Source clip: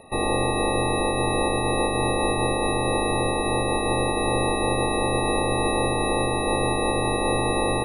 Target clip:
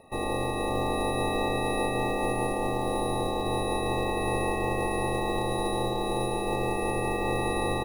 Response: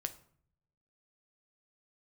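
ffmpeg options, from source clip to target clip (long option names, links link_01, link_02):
-af "highshelf=frequency=4100:gain=-5.5,acrusher=bits=6:mode=log:mix=0:aa=0.000001,aecho=1:1:576:0.473,volume=-6dB"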